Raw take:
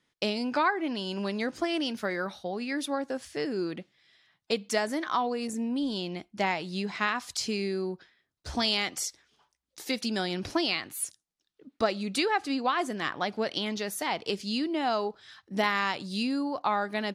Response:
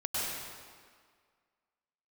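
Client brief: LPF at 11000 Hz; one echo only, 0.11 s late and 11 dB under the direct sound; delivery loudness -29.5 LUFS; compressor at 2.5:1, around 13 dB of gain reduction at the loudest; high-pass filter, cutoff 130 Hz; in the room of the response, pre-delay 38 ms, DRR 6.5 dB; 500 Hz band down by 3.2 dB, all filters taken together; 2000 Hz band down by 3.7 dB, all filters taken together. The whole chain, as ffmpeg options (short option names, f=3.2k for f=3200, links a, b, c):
-filter_complex "[0:a]highpass=130,lowpass=11k,equalizer=f=500:t=o:g=-4,equalizer=f=2k:t=o:g=-4.5,acompressor=threshold=-44dB:ratio=2.5,aecho=1:1:110:0.282,asplit=2[a][b];[1:a]atrim=start_sample=2205,adelay=38[c];[b][c]afir=irnorm=-1:irlink=0,volume=-13.5dB[d];[a][d]amix=inputs=2:normalize=0,volume=12dB"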